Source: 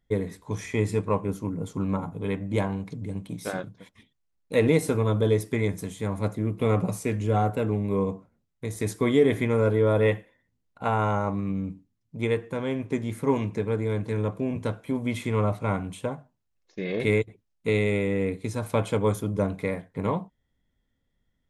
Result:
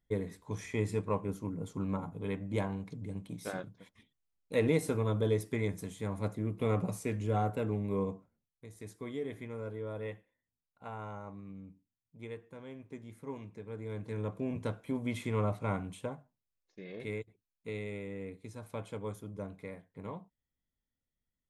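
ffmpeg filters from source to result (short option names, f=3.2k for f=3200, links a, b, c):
-af "volume=4dB,afade=t=out:st=8.03:d=0.64:silence=0.281838,afade=t=in:st=13.63:d=0.89:silence=0.266073,afade=t=out:st=15.8:d=1.05:silence=0.354813"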